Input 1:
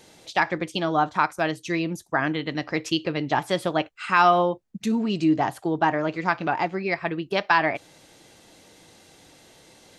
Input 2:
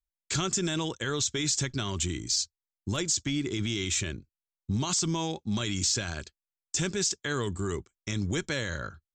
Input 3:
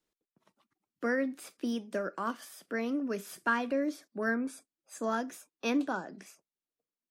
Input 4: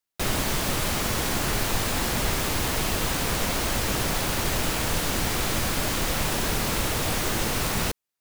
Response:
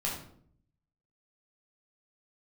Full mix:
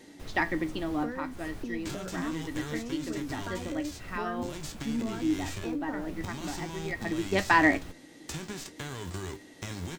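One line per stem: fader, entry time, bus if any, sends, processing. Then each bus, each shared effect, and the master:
-0.5 dB, 0.00 s, no bus, no send, small resonant body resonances 280/1900 Hz, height 16 dB, ringing for 40 ms; auto duck -14 dB, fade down 1.35 s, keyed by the third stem
+3.0 dB, 1.55 s, bus A, no send, spectral whitening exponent 0.3; compressor, threshold -29 dBFS, peak gain reduction 6 dB
+3.0 dB, 0.00 s, bus A, no send, three-band squash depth 40%
-17.0 dB, 0.00 s, bus A, no send, dry
bus A: 0.0 dB, tilt -2 dB/oct; compressor, threshold -30 dBFS, peak gain reduction 10.5 dB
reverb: off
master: flange 0.53 Hz, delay 9.9 ms, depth 3.9 ms, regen +65%

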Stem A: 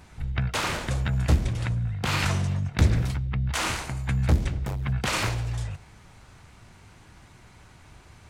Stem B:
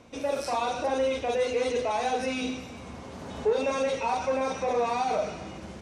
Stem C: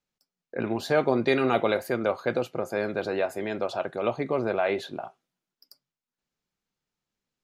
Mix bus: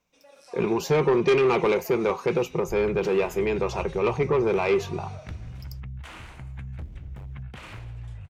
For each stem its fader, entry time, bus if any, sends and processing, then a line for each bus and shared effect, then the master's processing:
-11.0 dB, 2.50 s, no send, resonant high shelf 3800 Hz -6.5 dB, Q 1.5; compressor 6:1, threshold -29 dBFS, peak gain reduction 14.5 dB
-19.5 dB, 0.00 s, no send, HPF 1200 Hz 6 dB/oct; AGC gain up to 7 dB
+2.5 dB, 0.00 s, no send, ripple EQ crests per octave 0.77, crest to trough 14 dB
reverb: off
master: low shelf 140 Hz +9 dB; soft clip -15 dBFS, distortion -13 dB

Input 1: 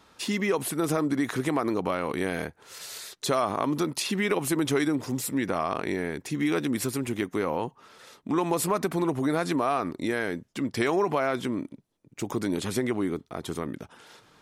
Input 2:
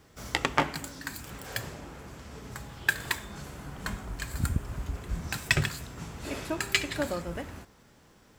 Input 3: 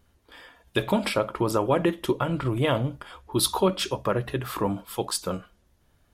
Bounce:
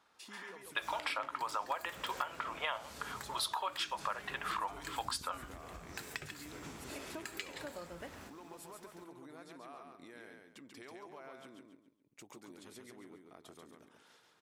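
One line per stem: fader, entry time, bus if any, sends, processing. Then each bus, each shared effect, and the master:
-14.0 dB, 0.00 s, no send, echo send -4 dB, compressor 2.5:1, threshold -39 dBFS, peak gain reduction 12.5 dB
-2.5 dB, 0.65 s, no send, echo send -18.5 dB, compressor 5:1, threshold -38 dBFS, peak gain reduction 17.5 dB
+3.0 dB, 0.00 s, no send, no echo send, HPF 810 Hz 24 dB/oct; low-pass opened by the level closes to 1800 Hz, open at -26.5 dBFS; high shelf 4500 Hz -12 dB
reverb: off
echo: feedback echo 0.138 s, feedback 31%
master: low shelf 220 Hz -11 dB; compressor 5:1, threshold -34 dBFS, peak gain reduction 12 dB

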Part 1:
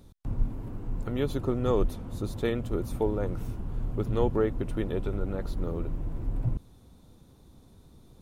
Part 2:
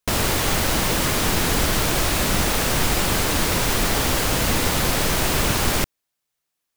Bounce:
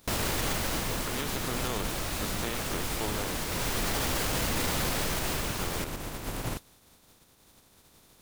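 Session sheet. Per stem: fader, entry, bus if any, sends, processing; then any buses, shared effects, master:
-6.0 dB, 0.00 s, muted 3.44–5.59, no send, spectral contrast lowered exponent 0.4; de-esser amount 50%
+1.0 dB, 0.00 s, no send, auto duck -14 dB, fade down 1.00 s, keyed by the first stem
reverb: off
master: limiter -20 dBFS, peak gain reduction 12 dB

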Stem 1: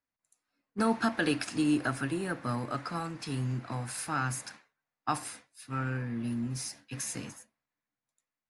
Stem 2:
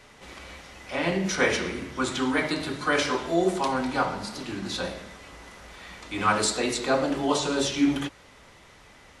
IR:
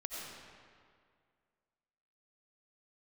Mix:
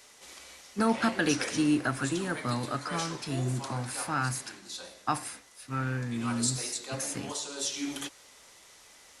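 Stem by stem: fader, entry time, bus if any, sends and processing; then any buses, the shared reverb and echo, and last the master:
+1.5 dB, 0.00 s, no send, dry
-6.5 dB, 0.00 s, no send, tone controls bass -10 dB, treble +15 dB; auto duck -9 dB, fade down 1.55 s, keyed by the first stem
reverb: off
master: dry

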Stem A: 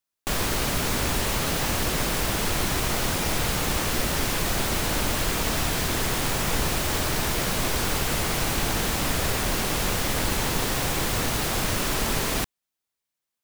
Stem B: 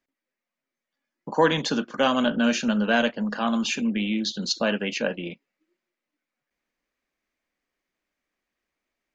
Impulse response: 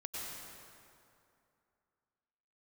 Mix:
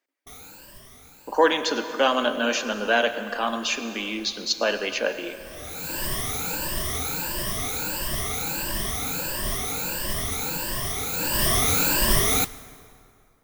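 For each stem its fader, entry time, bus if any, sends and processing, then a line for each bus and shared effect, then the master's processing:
4.97 s -22 dB -> 5.71 s -11.5 dB -> 11.11 s -11.5 dB -> 11.43 s -4 dB, 0.00 s, send -18 dB, moving spectral ripple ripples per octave 1.3, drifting +1.5 Hz, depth 24 dB; high shelf 10000 Hz +8 dB; modulation noise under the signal 12 dB; auto duck -21 dB, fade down 1.70 s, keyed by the second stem
0.0 dB, 0.00 s, send -8 dB, HPF 310 Hz 24 dB/oct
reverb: on, RT60 2.6 s, pre-delay 88 ms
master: dry

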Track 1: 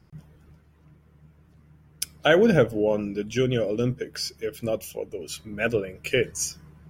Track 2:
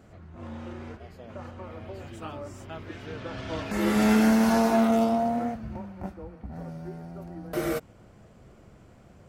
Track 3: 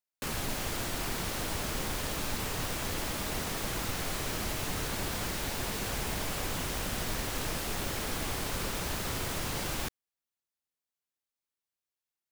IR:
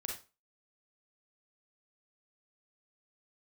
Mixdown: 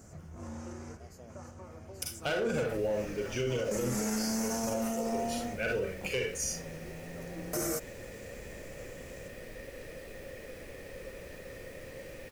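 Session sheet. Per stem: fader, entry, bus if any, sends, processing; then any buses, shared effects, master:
+3.0 dB, 0.00 s, bus A, send -7 dB, bell 170 Hz -5.5 dB 1.7 oct; comb 1.4 ms, depth 33%; hard clip -17.5 dBFS, distortion -11 dB
-1.5 dB, 0.00 s, no bus, no send, resonant high shelf 4700 Hz +10.5 dB, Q 3; auto duck -7 dB, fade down 1.85 s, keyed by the first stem
+2.0 dB, 2.40 s, bus A, send -21 dB, dry
bus A: 0.0 dB, vocal tract filter e; limiter -30.5 dBFS, peak gain reduction 15.5 dB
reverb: on, RT60 0.30 s, pre-delay 33 ms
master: limiter -23.5 dBFS, peak gain reduction 9 dB

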